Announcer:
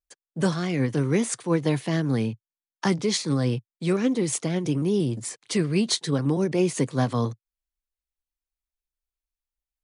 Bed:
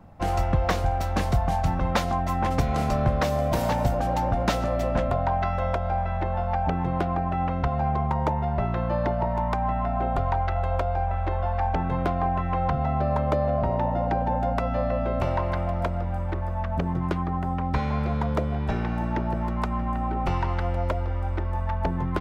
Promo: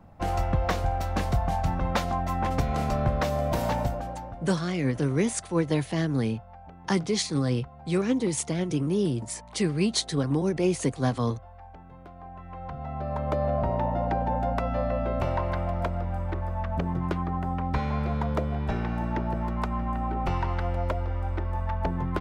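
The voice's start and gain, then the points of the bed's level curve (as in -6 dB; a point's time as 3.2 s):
4.05 s, -2.0 dB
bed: 3.78 s -2.5 dB
4.6 s -22 dB
12.05 s -22 dB
13.45 s -2 dB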